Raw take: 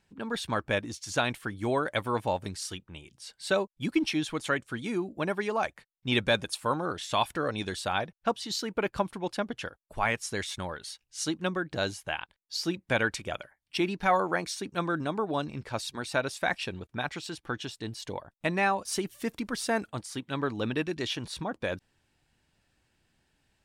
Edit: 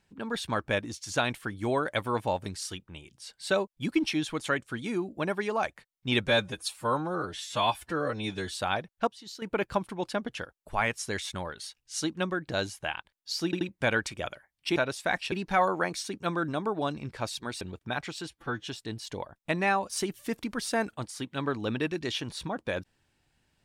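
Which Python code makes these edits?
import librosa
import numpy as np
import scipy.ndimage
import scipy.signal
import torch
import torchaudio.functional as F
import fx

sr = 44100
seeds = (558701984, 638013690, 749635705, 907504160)

y = fx.edit(x, sr, fx.stretch_span(start_s=6.27, length_s=1.52, factor=1.5),
    fx.clip_gain(start_s=8.31, length_s=0.35, db=-11.0),
    fx.stutter(start_s=12.69, slice_s=0.08, count=3),
    fx.move(start_s=16.13, length_s=0.56, to_s=13.84),
    fx.stretch_span(start_s=17.37, length_s=0.25, factor=1.5), tone=tone)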